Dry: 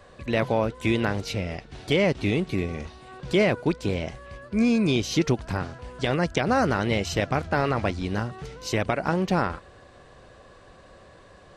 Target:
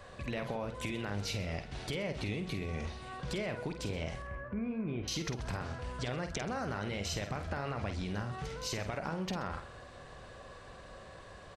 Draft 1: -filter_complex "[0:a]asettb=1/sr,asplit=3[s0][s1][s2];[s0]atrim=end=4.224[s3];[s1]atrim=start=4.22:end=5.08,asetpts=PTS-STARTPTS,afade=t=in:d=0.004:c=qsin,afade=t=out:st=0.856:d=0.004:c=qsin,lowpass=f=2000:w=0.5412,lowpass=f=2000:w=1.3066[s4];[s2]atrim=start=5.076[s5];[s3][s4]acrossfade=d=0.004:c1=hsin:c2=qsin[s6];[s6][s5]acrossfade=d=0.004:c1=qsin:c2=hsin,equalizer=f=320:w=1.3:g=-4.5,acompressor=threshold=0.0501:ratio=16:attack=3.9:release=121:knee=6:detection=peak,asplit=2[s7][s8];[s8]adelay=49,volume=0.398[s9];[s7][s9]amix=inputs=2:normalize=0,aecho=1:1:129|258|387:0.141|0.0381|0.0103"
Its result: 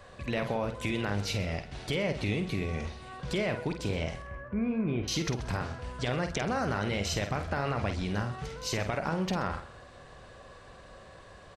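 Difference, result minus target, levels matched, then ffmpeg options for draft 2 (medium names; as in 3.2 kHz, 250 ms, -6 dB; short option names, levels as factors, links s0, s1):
compression: peak gain reduction -6.5 dB
-filter_complex "[0:a]asettb=1/sr,asplit=3[s0][s1][s2];[s0]atrim=end=4.224[s3];[s1]atrim=start=4.22:end=5.08,asetpts=PTS-STARTPTS,afade=t=in:d=0.004:c=qsin,afade=t=out:st=0.856:d=0.004:c=qsin,lowpass=f=2000:w=0.5412,lowpass=f=2000:w=1.3066[s4];[s2]atrim=start=5.076[s5];[s3][s4]acrossfade=d=0.004:c1=hsin:c2=qsin[s6];[s6][s5]acrossfade=d=0.004:c1=qsin:c2=hsin,equalizer=f=320:w=1.3:g=-4.5,acompressor=threshold=0.0224:ratio=16:attack=3.9:release=121:knee=6:detection=peak,asplit=2[s7][s8];[s8]adelay=49,volume=0.398[s9];[s7][s9]amix=inputs=2:normalize=0,aecho=1:1:129|258|387:0.141|0.0381|0.0103"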